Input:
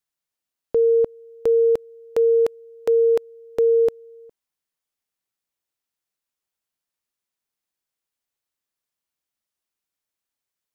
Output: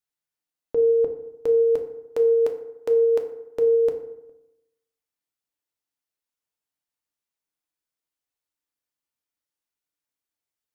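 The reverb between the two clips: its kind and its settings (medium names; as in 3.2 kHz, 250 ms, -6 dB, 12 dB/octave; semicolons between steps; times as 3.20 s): FDN reverb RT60 0.89 s, low-frequency decay 1.05×, high-frequency decay 0.5×, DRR 4 dB; trim -5 dB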